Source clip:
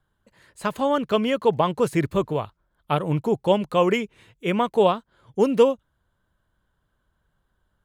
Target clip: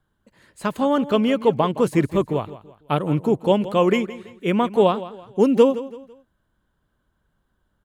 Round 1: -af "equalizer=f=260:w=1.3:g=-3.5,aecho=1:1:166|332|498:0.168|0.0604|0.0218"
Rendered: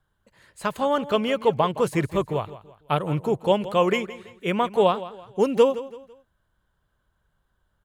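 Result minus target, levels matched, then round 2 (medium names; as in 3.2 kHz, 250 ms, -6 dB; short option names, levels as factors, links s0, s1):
250 Hz band -4.0 dB
-af "equalizer=f=260:w=1.3:g=5.5,aecho=1:1:166|332|498:0.168|0.0604|0.0218"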